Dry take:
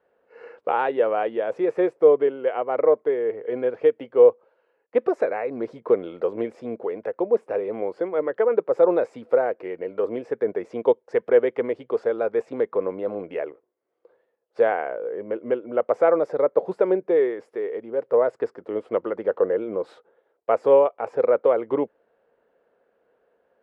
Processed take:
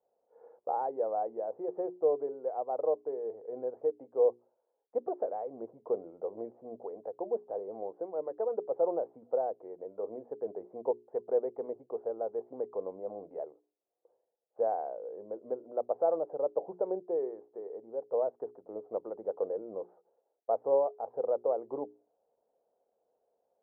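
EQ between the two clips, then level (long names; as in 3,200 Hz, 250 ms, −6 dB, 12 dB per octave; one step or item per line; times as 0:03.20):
transistor ladder low-pass 880 Hz, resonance 55%
mains-hum notches 60/120/180/240/300/360/420 Hz
−5.5 dB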